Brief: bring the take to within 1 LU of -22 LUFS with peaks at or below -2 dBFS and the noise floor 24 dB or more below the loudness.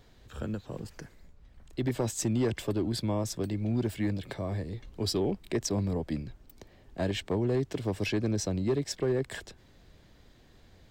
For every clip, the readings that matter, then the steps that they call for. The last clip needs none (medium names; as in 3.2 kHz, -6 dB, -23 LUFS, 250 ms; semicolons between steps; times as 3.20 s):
clipped samples 0.6%; clipping level -21.0 dBFS; loudness -32.0 LUFS; peak level -21.0 dBFS; loudness target -22.0 LUFS
-> clip repair -21 dBFS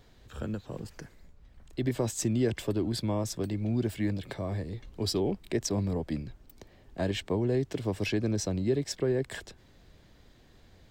clipped samples 0.0%; loudness -31.5 LUFS; peak level -16.0 dBFS; loudness target -22.0 LUFS
-> trim +9.5 dB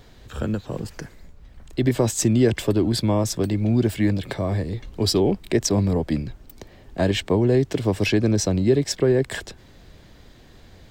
loudness -22.0 LUFS; peak level -6.5 dBFS; noise floor -49 dBFS